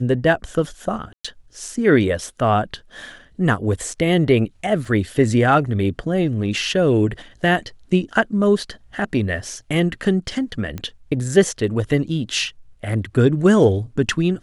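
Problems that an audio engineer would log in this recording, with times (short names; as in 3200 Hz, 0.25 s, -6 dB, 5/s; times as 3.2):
1.13–1.25 gap 0.115 s
4.85 gap 2.7 ms
10.78 pop -16 dBFS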